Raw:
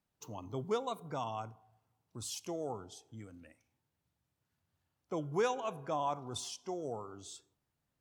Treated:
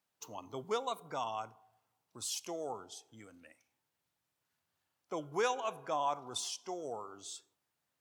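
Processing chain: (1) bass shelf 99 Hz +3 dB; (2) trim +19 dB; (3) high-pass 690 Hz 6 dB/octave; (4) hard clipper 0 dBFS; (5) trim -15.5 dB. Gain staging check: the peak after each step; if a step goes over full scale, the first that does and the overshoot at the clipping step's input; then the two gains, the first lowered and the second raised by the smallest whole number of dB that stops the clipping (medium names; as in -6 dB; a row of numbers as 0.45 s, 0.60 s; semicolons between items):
-22.5 dBFS, -3.5 dBFS, -3.5 dBFS, -3.5 dBFS, -19.0 dBFS; nothing clips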